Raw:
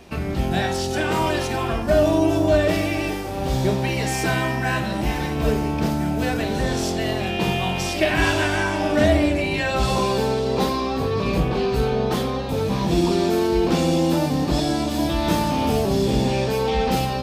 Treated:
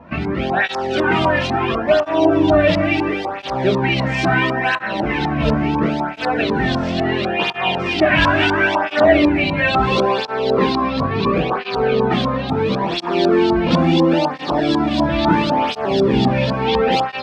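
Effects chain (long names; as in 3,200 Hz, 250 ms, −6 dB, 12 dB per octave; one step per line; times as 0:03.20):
auto-filter low-pass saw up 4 Hz 970–4,400 Hz
through-zero flanger with one copy inverted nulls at 0.73 Hz, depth 2.7 ms
level +6.5 dB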